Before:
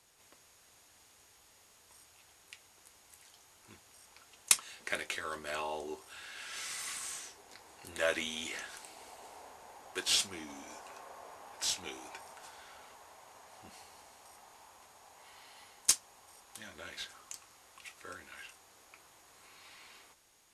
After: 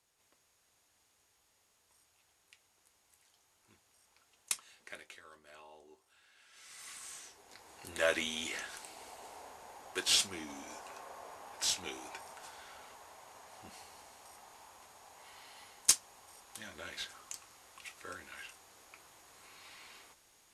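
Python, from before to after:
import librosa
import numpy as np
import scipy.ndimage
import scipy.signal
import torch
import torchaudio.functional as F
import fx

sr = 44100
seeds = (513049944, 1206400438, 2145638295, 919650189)

y = fx.gain(x, sr, db=fx.line((4.72, -10.0), (5.38, -18.0), (6.52, -18.0), (6.84, -9.0), (7.81, 1.0)))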